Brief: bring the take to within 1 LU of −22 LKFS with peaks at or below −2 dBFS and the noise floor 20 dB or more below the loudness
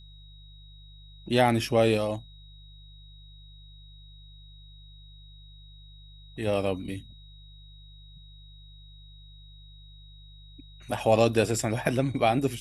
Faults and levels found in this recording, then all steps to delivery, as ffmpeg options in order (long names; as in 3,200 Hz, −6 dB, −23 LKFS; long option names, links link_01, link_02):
mains hum 50 Hz; hum harmonics up to 150 Hz; level of the hum −47 dBFS; interfering tone 3,800 Hz; level of the tone −54 dBFS; integrated loudness −26.0 LKFS; sample peak −6.5 dBFS; target loudness −22.0 LKFS
→ -af "bandreject=frequency=50:width_type=h:width=4,bandreject=frequency=100:width_type=h:width=4,bandreject=frequency=150:width_type=h:width=4"
-af "bandreject=frequency=3800:width=30"
-af "volume=4dB"